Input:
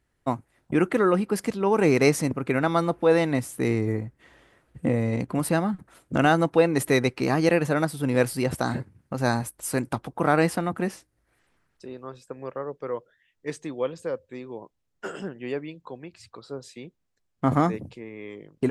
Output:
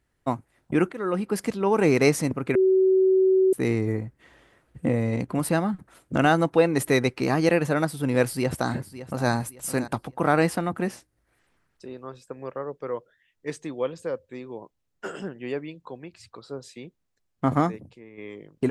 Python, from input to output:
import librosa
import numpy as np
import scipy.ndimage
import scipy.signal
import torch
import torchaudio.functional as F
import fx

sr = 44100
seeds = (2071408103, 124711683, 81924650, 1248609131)

y = fx.echo_throw(x, sr, start_s=8.25, length_s=1.06, ms=560, feedback_pct=30, wet_db=-14.0)
y = fx.upward_expand(y, sr, threshold_db=-32.0, expansion=1.5, at=(17.46, 18.18))
y = fx.edit(y, sr, fx.fade_in_from(start_s=0.92, length_s=0.57, curve='qsin', floor_db=-18.5),
    fx.bleep(start_s=2.55, length_s=0.98, hz=378.0, db=-15.5), tone=tone)